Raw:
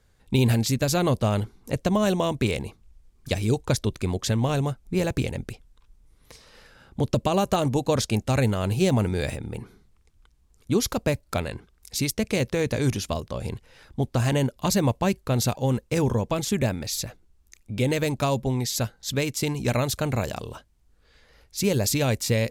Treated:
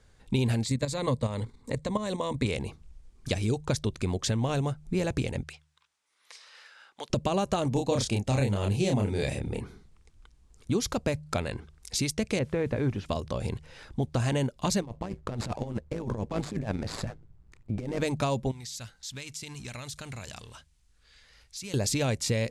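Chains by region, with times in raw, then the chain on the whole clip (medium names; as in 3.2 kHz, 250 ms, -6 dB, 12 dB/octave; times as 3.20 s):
0.64–2.46 s: rippled EQ curve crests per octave 1, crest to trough 9 dB + level held to a coarse grid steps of 10 dB
5.43–7.10 s: high-pass 1.2 kHz + treble shelf 7.1 kHz -7 dB
7.72–9.61 s: peaking EQ 1.4 kHz -5.5 dB 0.6 oct + doubling 30 ms -3.5 dB
12.39–13.06 s: low-pass 1.9 kHz + word length cut 10-bit, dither triangular
14.81–18.01 s: median filter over 15 samples + compressor with a negative ratio -27 dBFS, ratio -0.5 + AM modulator 110 Hz, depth 55%
18.51–21.74 s: companding laws mixed up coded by mu + amplifier tone stack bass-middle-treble 5-5-5 + compression, threshold -38 dBFS
whole clip: low-pass 10 kHz 24 dB/octave; de-hum 75.72 Hz, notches 2; compression 2:1, threshold -33 dBFS; trim +3 dB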